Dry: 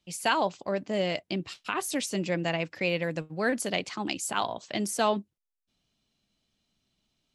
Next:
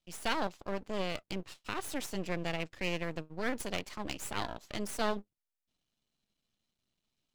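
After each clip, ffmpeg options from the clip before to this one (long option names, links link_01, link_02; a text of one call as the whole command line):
ffmpeg -i in.wav -af "aeval=exprs='max(val(0),0)':channel_layout=same,volume=-4dB" out.wav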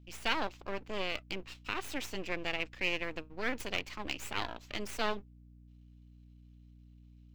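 ffmpeg -i in.wav -af "equalizer=frequency=160:width_type=o:width=0.67:gain=-11,equalizer=frequency=630:width_type=o:width=0.67:gain=-3,equalizer=frequency=2500:width_type=o:width=0.67:gain=6,equalizer=frequency=10000:width_type=o:width=0.67:gain=-9,aeval=exprs='val(0)+0.00178*(sin(2*PI*60*n/s)+sin(2*PI*2*60*n/s)/2+sin(2*PI*3*60*n/s)/3+sin(2*PI*4*60*n/s)/4+sin(2*PI*5*60*n/s)/5)':channel_layout=same" out.wav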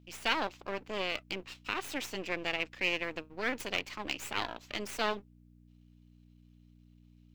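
ffmpeg -i in.wav -af "lowshelf=frequency=100:gain=-10,volume=2dB" out.wav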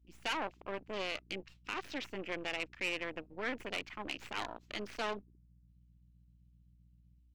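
ffmpeg -i in.wav -af "afwtdn=0.00631,asoftclip=type=tanh:threshold=-24dB,volume=-2dB" out.wav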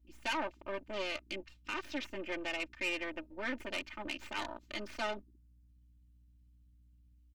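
ffmpeg -i in.wav -af "aecho=1:1:3.3:0.88,volume=-2dB" out.wav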